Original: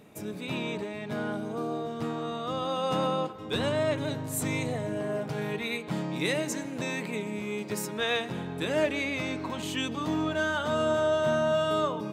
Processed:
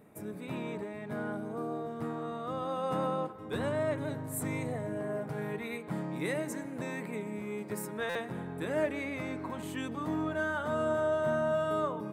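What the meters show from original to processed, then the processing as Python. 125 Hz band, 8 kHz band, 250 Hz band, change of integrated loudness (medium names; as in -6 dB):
-4.0 dB, -7.5 dB, -4.0 dB, -4.5 dB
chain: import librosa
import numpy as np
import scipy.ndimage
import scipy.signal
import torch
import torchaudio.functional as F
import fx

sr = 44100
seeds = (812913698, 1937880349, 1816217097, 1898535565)

y = fx.band_shelf(x, sr, hz=4200.0, db=-10.0, octaves=1.7)
y = fx.buffer_glitch(y, sr, at_s=(8.09,), block=256, repeats=10)
y = F.gain(torch.from_numpy(y), -4.0).numpy()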